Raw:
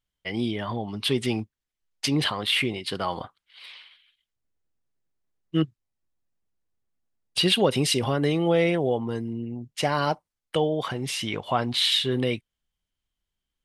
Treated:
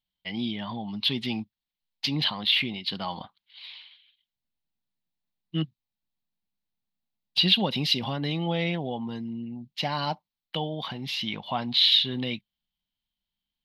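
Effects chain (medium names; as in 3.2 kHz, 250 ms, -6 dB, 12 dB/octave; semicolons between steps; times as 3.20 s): FFT filter 110 Hz 0 dB, 200 Hz +10 dB, 420 Hz -5 dB, 880 Hz +7 dB, 1.3 kHz -1 dB, 4.1 kHz +13 dB, 8.9 kHz -17 dB, 13 kHz +7 dB; trim -8.5 dB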